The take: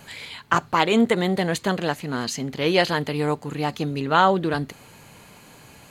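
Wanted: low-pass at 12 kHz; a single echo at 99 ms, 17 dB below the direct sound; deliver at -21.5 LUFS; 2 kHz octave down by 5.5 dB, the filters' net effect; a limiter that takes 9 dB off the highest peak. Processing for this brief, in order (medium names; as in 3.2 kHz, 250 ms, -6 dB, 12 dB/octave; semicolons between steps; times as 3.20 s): low-pass 12 kHz; peaking EQ 2 kHz -7.5 dB; peak limiter -14.5 dBFS; delay 99 ms -17 dB; trim +4.5 dB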